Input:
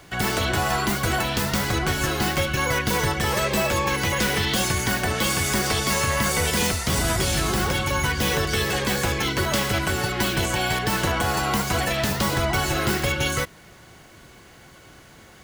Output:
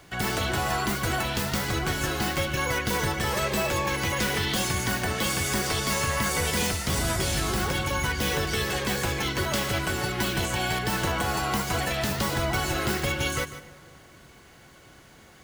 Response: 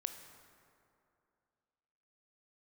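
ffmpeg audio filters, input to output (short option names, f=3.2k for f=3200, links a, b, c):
-filter_complex "[0:a]asplit=2[a][b];[1:a]atrim=start_sample=2205,adelay=149[c];[b][c]afir=irnorm=-1:irlink=0,volume=-11dB[d];[a][d]amix=inputs=2:normalize=0,volume=-4dB"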